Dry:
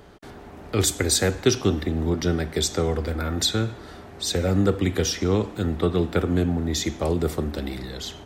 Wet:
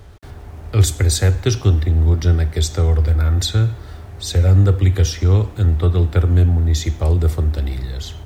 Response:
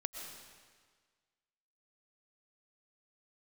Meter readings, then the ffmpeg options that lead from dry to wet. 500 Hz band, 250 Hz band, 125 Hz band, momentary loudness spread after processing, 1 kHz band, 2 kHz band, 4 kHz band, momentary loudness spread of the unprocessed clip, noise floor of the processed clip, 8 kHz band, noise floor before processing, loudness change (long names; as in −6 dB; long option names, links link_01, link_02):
−1.0 dB, −1.5 dB, +13.0 dB, 8 LU, 0.0 dB, 0.0 dB, 0.0 dB, 11 LU, −37 dBFS, 0.0 dB, −43 dBFS, +7.5 dB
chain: -af "acrusher=bits=8:mix=0:aa=0.5,lowshelf=frequency=140:width_type=q:width=1.5:gain=12"